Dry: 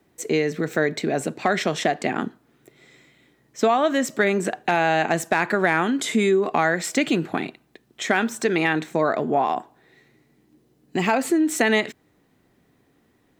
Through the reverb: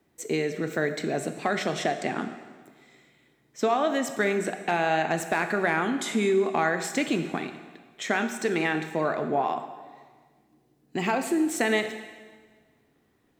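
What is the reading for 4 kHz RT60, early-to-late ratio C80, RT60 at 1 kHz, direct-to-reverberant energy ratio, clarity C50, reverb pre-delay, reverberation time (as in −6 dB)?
1.4 s, 10.5 dB, 1.5 s, 7.5 dB, 9.5 dB, 6 ms, 1.5 s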